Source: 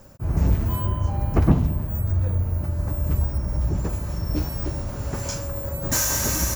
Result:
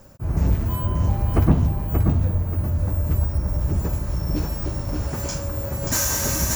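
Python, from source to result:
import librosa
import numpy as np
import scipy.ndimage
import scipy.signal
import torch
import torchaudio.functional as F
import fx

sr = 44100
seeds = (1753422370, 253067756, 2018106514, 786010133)

y = fx.echo_feedback(x, sr, ms=582, feedback_pct=29, wet_db=-4.5)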